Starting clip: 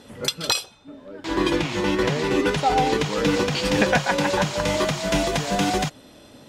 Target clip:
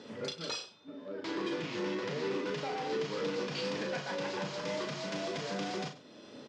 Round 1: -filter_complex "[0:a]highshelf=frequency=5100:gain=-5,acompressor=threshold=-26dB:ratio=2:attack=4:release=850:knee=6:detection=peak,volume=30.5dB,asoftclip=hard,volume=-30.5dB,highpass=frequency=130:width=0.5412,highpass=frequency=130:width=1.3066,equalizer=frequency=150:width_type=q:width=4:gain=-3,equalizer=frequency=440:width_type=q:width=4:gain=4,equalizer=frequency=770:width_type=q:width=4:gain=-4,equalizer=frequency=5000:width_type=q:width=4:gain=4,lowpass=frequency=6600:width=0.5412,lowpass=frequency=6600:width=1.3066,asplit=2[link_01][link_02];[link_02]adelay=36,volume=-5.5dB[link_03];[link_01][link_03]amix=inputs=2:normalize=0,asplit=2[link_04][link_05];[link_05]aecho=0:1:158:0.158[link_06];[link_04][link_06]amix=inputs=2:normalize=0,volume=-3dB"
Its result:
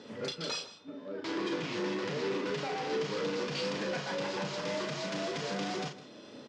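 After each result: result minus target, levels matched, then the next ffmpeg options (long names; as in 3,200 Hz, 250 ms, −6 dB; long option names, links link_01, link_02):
echo 59 ms late; downward compressor: peak gain reduction −4 dB
-filter_complex "[0:a]highshelf=frequency=5100:gain=-5,acompressor=threshold=-26dB:ratio=2:attack=4:release=850:knee=6:detection=peak,volume=30.5dB,asoftclip=hard,volume=-30.5dB,highpass=frequency=130:width=0.5412,highpass=frequency=130:width=1.3066,equalizer=frequency=150:width_type=q:width=4:gain=-3,equalizer=frequency=440:width_type=q:width=4:gain=4,equalizer=frequency=770:width_type=q:width=4:gain=-4,equalizer=frequency=5000:width_type=q:width=4:gain=4,lowpass=frequency=6600:width=0.5412,lowpass=frequency=6600:width=1.3066,asplit=2[link_01][link_02];[link_02]adelay=36,volume=-5.5dB[link_03];[link_01][link_03]amix=inputs=2:normalize=0,asplit=2[link_04][link_05];[link_05]aecho=0:1:99:0.158[link_06];[link_04][link_06]amix=inputs=2:normalize=0,volume=-3dB"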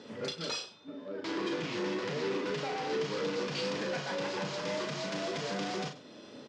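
downward compressor: peak gain reduction −4 dB
-filter_complex "[0:a]highshelf=frequency=5100:gain=-5,acompressor=threshold=-33.5dB:ratio=2:attack=4:release=850:knee=6:detection=peak,volume=30.5dB,asoftclip=hard,volume=-30.5dB,highpass=frequency=130:width=0.5412,highpass=frequency=130:width=1.3066,equalizer=frequency=150:width_type=q:width=4:gain=-3,equalizer=frequency=440:width_type=q:width=4:gain=4,equalizer=frequency=770:width_type=q:width=4:gain=-4,equalizer=frequency=5000:width_type=q:width=4:gain=4,lowpass=frequency=6600:width=0.5412,lowpass=frequency=6600:width=1.3066,asplit=2[link_01][link_02];[link_02]adelay=36,volume=-5.5dB[link_03];[link_01][link_03]amix=inputs=2:normalize=0,asplit=2[link_04][link_05];[link_05]aecho=0:1:99:0.158[link_06];[link_04][link_06]amix=inputs=2:normalize=0,volume=-3dB"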